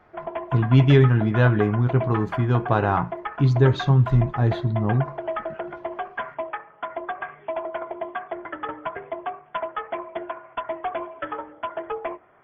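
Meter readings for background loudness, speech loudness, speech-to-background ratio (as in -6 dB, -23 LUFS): -32.5 LUFS, -20.5 LUFS, 12.0 dB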